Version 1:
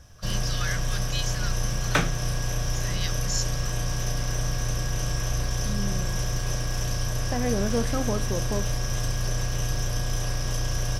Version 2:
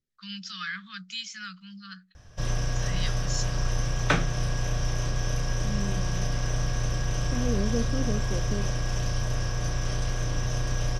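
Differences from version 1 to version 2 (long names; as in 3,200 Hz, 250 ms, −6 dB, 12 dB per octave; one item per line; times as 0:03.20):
second voice: add moving average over 49 samples
background: entry +2.15 s
master: add high-frequency loss of the air 72 metres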